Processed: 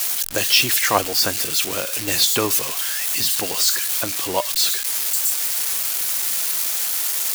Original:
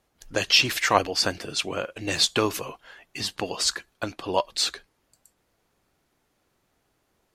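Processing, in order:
spike at every zero crossing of −15 dBFS
level +1.5 dB

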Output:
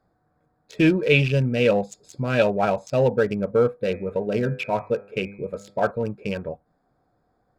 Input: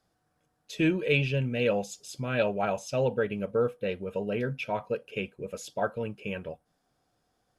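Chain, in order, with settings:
adaptive Wiener filter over 15 samples
0:03.76–0:05.91: hum removal 100.5 Hz, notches 25
level +7.5 dB

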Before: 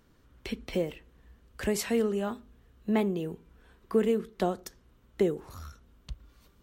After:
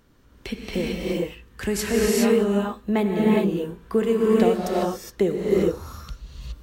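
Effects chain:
0:00.76–0:01.92: parametric band 610 Hz −9.5 dB 0.48 octaves
reverb whose tail is shaped and stops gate 440 ms rising, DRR −4 dB
level +4 dB

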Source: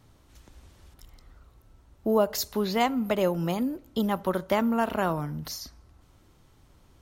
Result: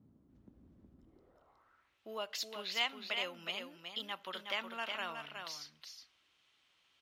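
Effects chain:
notch filter 880 Hz, Q 26
single-tap delay 367 ms −6 dB
band-pass filter sweep 220 Hz → 2,900 Hz, 0:00.99–0:02.00
level +2 dB

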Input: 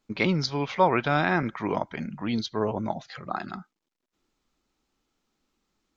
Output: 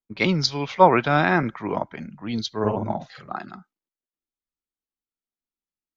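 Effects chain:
0:02.59–0:03.33: double-tracking delay 48 ms −3 dB
multiband upward and downward expander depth 70%
level +2.5 dB

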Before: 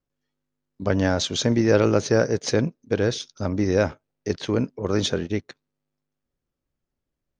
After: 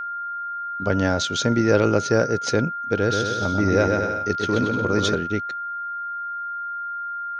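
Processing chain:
steady tone 1,400 Hz −27 dBFS
0:02.97–0:05.15: bouncing-ball delay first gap 130 ms, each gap 0.75×, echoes 5

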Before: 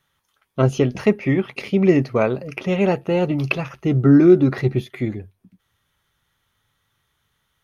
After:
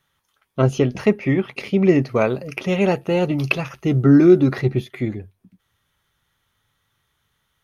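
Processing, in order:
0:02.09–0:04.58: high-shelf EQ 4,000 Hz +7 dB

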